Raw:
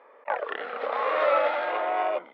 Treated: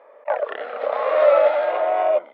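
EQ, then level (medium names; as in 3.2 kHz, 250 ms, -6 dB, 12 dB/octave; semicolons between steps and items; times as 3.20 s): high-pass 190 Hz; peaking EQ 610 Hz +11.5 dB 0.47 oct; 0.0 dB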